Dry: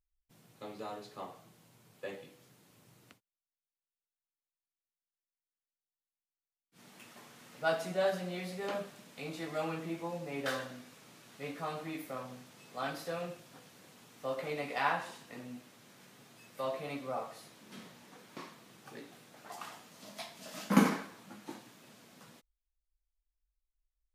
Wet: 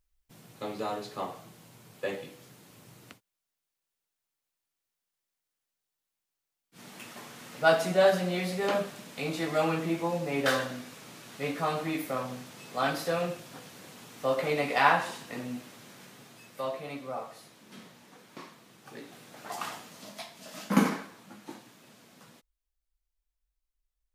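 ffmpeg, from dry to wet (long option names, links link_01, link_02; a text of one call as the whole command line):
ffmpeg -i in.wav -af "volume=17.5dB,afade=type=out:start_time=15.71:duration=1.09:silence=0.398107,afade=type=in:start_time=18.81:duration=0.86:silence=0.375837,afade=type=out:start_time=19.67:duration=0.57:silence=0.398107" out.wav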